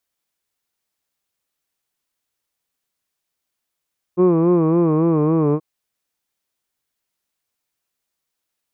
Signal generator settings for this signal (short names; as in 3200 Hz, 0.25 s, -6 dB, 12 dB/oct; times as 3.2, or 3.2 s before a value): formant vowel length 1.43 s, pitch 175 Hz, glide -2.5 st, vibrato 3.6 Hz, vibrato depth 0.95 st, F1 390 Hz, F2 1100 Hz, F3 2400 Hz